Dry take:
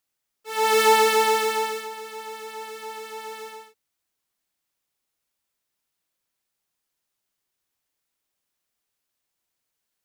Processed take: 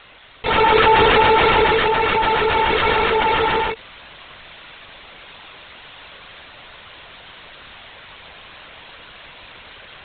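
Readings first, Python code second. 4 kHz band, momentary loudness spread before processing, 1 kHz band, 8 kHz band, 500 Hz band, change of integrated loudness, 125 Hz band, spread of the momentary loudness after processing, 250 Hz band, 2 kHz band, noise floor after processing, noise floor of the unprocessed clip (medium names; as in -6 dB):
+8.5 dB, 19 LU, +9.0 dB, under -40 dB, +7.0 dB, +5.0 dB, no reading, 8 LU, +15.5 dB, +10.5 dB, -43 dBFS, -81 dBFS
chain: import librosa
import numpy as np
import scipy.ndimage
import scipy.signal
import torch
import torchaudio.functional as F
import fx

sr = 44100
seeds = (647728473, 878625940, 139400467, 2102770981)

p1 = fx.peak_eq(x, sr, hz=150.0, db=-10.5, octaves=1.5)
p2 = fx.rider(p1, sr, range_db=10, speed_s=2.0)
p3 = p1 + F.gain(torch.from_numpy(p2), 3.0).numpy()
p4 = fx.lpc_vocoder(p3, sr, seeds[0], excitation='whisper', order=16)
p5 = fx.env_flatten(p4, sr, amount_pct=70)
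y = F.gain(torch.from_numpy(p5), -4.0).numpy()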